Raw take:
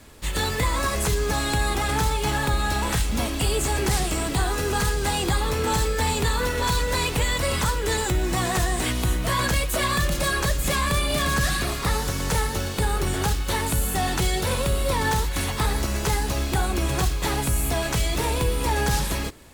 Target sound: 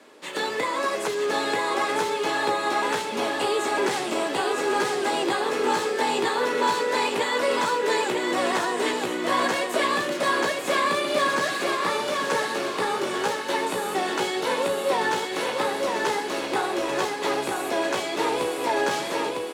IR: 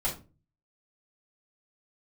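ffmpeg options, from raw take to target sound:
-filter_complex "[0:a]highpass=f=320:w=0.5412,highpass=f=320:w=1.3066,aemphasis=mode=reproduction:type=bsi,aecho=1:1:954|1908|2862|3816|4770:0.668|0.261|0.102|0.0396|0.0155,asplit=2[a][b];[1:a]atrim=start_sample=2205[c];[b][c]afir=irnorm=-1:irlink=0,volume=-18dB[d];[a][d]amix=inputs=2:normalize=0"

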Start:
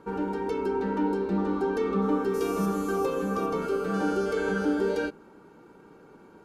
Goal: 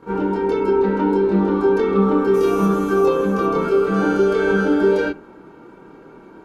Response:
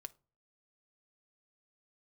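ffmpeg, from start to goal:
-filter_complex "[0:a]asplit=2[a][b];[1:a]atrim=start_sample=2205,lowpass=3.7k,adelay=25[c];[b][c]afir=irnorm=-1:irlink=0,volume=13dB[d];[a][d]amix=inputs=2:normalize=0,volume=1dB"

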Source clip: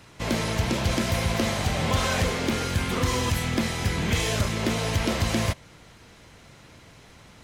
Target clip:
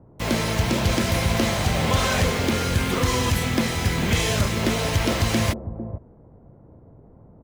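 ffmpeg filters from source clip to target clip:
-filter_complex "[0:a]acrossover=split=780[a][b];[a]aecho=1:1:451:0.355[c];[b]acrusher=bits=6:mix=0:aa=0.000001[d];[c][d]amix=inputs=2:normalize=0,volume=3dB"

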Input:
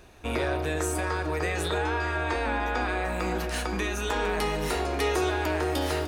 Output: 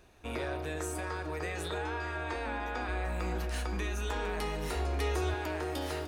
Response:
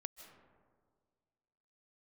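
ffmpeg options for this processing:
-filter_complex "[0:a]asettb=1/sr,asplit=3[a][b][c];[a]atrim=end=2.884[d];[b]atrim=start=2.88:end=5.34,asetpts=PTS-STARTPTS,afade=t=in:d=0.004:c=qsin,afade=t=out:st=2.456:d=0.004:c=qsin,equalizer=f=73:w=1.6:g=10[e];[c]atrim=start=5.336[f];[d][e]acrossfade=d=0.004:c1=hsin:c2=qsin[g];[g][f]acrossfade=d=0.004:c1=qsin:c2=hsin,volume=-8dB"

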